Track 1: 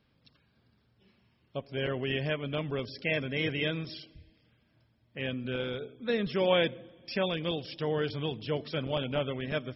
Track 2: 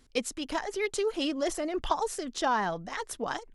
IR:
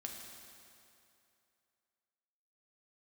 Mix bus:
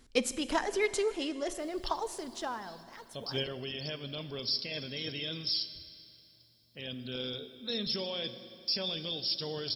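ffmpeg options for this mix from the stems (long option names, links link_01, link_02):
-filter_complex "[0:a]highshelf=frequency=3100:width_type=q:width=1.5:gain=14,alimiter=limit=-21.5dB:level=0:latency=1:release=12,aexciter=amount=2.1:drive=6.4:freq=4000,adelay=1600,volume=-1dB,asplit=2[link_01][link_02];[link_02]volume=-11.5dB[link_03];[1:a]volume=-1dB,afade=type=out:start_time=0.82:duration=0.44:silence=0.446684,afade=type=out:start_time=2.33:duration=0.27:silence=0.334965,asplit=3[link_04][link_05][link_06];[link_05]volume=-5dB[link_07];[link_06]apad=whole_len=500882[link_08];[link_01][link_08]sidechaingate=range=-9dB:threshold=-56dB:ratio=16:detection=peak[link_09];[2:a]atrim=start_sample=2205[link_10];[link_03][link_07]amix=inputs=2:normalize=0[link_11];[link_11][link_10]afir=irnorm=-1:irlink=0[link_12];[link_09][link_04][link_12]amix=inputs=3:normalize=0"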